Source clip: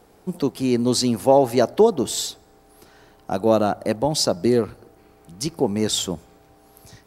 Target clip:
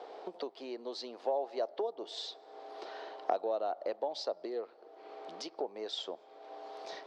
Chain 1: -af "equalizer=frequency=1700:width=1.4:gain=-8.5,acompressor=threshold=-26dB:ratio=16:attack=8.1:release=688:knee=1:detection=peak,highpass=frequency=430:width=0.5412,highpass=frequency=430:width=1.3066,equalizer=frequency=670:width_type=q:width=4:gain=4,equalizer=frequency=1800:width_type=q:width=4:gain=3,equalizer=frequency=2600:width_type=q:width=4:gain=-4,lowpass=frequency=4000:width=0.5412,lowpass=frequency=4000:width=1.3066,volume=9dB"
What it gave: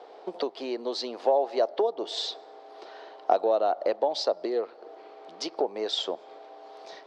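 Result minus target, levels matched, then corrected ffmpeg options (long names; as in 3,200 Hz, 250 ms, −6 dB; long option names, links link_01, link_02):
downward compressor: peak gain reduction −10 dB
-af "equalizer=frequency=1700:width=1.4:gain=-8.5,acompressor=threshold=-36.5dB:ratio=16:attack=8.1:release=688:knee=1:detection=peak,highpass=frequency=430:width=0.5412,highpass=frequency=430:width=1.3066,equalizer=frequency=670:width_type=q:width=4:gain=4,equalizer=frequency=1800:width_type=q:width=4:gain=3,equalizer=frequency=2600:width_type=q:width=4:gain=-4,lowpass=frequency=4000:width=0.5412,lowpass=frequency=4000:width=1.3066,volume=9dB"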